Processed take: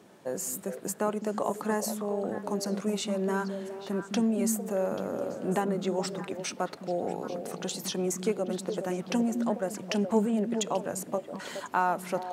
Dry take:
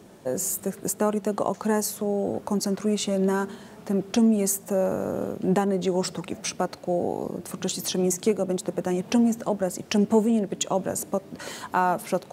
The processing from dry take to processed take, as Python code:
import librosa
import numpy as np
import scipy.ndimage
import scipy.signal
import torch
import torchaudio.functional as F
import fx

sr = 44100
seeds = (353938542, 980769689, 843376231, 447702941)

p1 = scipy.signal.sosfilt(scipy.signal.butter(2, 120.0, 'highpass', fs=sr, output='sos'), x)
p2 = fx.peak_eq(p1, sr, hz=1600.0, db=5.0, octaves=2.9)
p3 = p2 + fx.echo_stepped(p2, sr, ms=209, hz=200.0, octaves=1.4, feedback_pct=70, wet_db=-3, dry=0)
y = F.gain(torch.from_numpy(p3), -7.5).numpy()